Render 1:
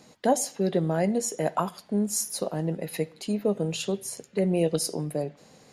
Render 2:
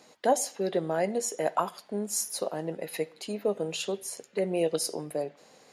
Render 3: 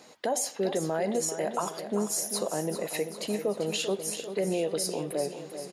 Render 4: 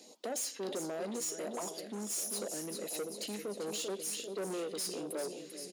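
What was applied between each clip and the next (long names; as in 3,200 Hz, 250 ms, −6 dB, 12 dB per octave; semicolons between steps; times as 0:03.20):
bass and treble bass −14 dB, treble −2 dB
brickwall limiter −23.5 dBFS, peak gain reduction 11.5 dB; on a send: repeating echo 392 ms, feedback 58%, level −10 dB; on the sum: level +3.5 dB
all-pass phaser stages 2, 1.4 Hz, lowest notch 750–1,700 Hz; soft clipping −33.5 dBFS, distortion −9 dB; high-pass filter 220 Hz 24 dB per octave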